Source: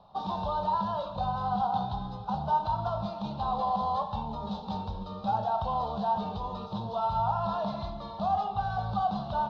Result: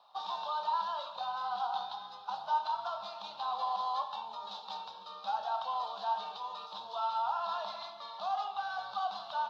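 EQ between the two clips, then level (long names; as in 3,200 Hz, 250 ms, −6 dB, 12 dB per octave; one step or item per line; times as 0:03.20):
high-pass filter 1,300 Hz 12 dB per octave
+3.0 dB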